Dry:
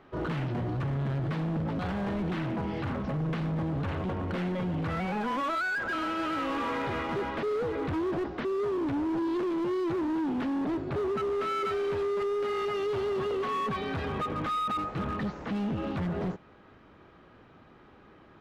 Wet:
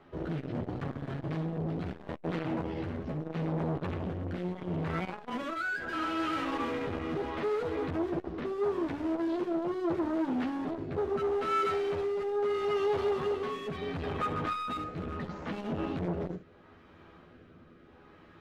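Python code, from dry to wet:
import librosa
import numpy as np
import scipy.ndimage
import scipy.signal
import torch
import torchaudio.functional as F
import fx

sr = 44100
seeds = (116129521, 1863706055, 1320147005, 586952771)

y = fx.rotary(x, sr, hz=0.75)
y = fx.room_early_taps(y, sr, ms=(12, 68), db=(-3.5, -11.0))
y = fx.transformer_sat(y, sr, knee_hz=510.0)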